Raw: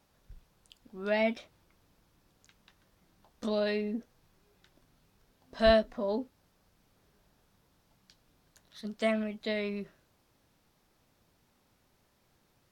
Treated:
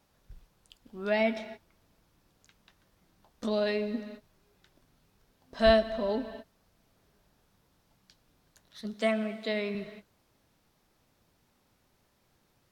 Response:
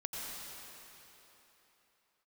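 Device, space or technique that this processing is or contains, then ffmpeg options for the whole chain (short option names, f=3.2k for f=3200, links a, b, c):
keyed gated reverb: -filter_complex "[0:a]asettb=1/sr,asplit=3[a][b][c];[a]atrim=end=8.964[d];[b]atrim=start=8.96:end=9.75,asetpts=PTS-STARTPTS,afade=t=in:d=0.004:c=qsin,afade=t=out:st=0.786:d=0.004:c=qsin,highpass=150[e];[c]atrim=start=9.746[f];[d][e]acrossfade=d=0.004:c1=hsin:c2=qsin[g];[g][f]acrossfade=d=0.004:c1=qsin:c2=hsin,asplit=3[h][i][j];[1:a]atrim=start_sample=2205[k];[i][k]afir=irnorm=-1:irlink=0[l];[j]apad=whole_len=560906[m];[l][m]sidechaingate=range=-33dB:threshold=-57dB:ratio=16:detection=peak,volume=-11.5dB[n];[h][n]amix=inputs=2:normalize=0"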